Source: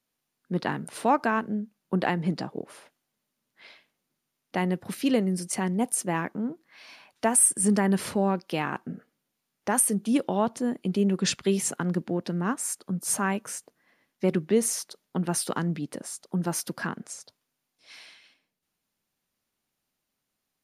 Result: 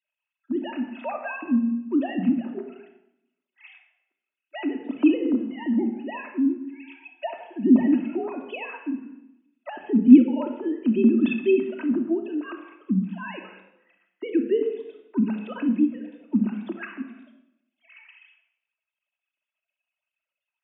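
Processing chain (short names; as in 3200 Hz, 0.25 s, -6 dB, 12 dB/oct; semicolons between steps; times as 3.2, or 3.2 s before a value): sine-wave speech; small resonant body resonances 240/2600 Hz, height 17 dB, ringing for 30 ms; on a send at -2 dB: reverb RT60 0.80 s, pre-delay 3 ms; on the sum: mismatched tape noise reduction encoder only; gain -10.5 dB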